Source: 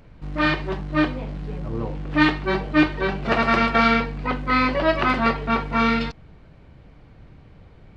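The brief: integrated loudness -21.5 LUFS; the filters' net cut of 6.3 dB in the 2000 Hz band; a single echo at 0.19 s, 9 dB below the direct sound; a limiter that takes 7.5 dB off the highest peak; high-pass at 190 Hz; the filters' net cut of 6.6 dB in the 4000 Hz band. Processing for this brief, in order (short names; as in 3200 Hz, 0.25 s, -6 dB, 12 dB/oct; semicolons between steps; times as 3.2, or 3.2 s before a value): HPF 190 Hz; bell 2000 Hz -6.5 dB; bell 4000 Hz -6 dB; limiter -15 dBFS; echo 0.19 s -9 dB; gain +4.5 dB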